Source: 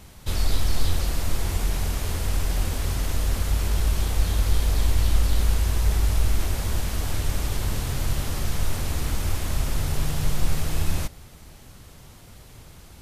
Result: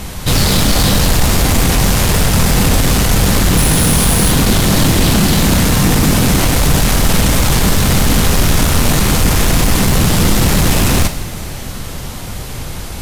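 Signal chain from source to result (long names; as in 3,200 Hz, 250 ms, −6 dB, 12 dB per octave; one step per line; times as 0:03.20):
0:03.57–0:04.32: parametric band 10,000 Hz +12.5 dB 0.24 octaves
sine wavefolder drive 18 dB, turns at −7 dBFS
convolution reverb, pre-delay 3 ms, DRR 8 dB
level −1 dB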